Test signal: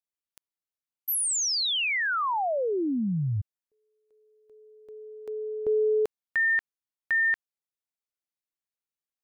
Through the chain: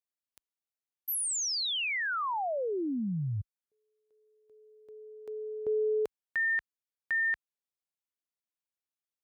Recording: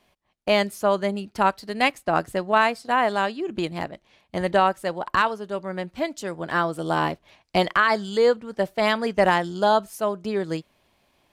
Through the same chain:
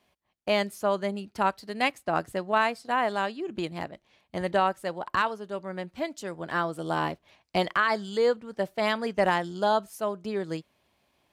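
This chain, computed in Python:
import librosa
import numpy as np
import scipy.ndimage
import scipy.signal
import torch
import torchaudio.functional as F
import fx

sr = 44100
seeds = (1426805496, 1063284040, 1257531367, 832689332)

y = scipy.signal.sosfilt(scipy.signal.butter(2, 43.0, 'highpass', fs=sr, output='sos'), x)
y = y * 10.0 ** (-5.0 / 20.0)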